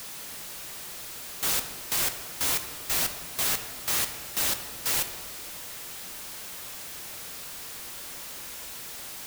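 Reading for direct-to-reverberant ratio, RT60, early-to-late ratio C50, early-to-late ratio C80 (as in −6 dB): 7.0 dB, 1.6 s, 9.5 dB, 11.0 dB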